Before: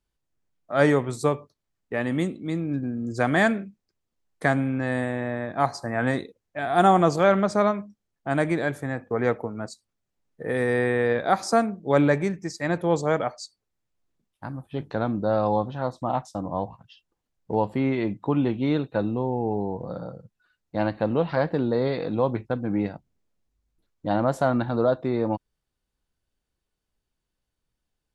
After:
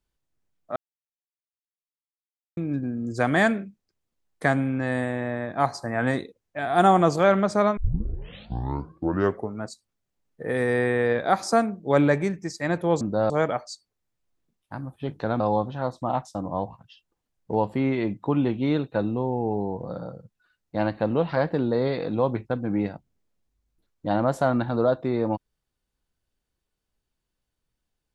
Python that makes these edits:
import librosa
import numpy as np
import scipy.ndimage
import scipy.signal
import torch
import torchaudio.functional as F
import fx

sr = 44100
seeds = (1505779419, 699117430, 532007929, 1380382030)

y = fx.edit(x, sr, fx.silence(start_s=0.76, length_s=1.81),
    fx.tape_start(start_s=7.77, length_s=1.81),
    fx.move(start_s=15.11, length_s=0.29, to_s=13.01), tone=tone)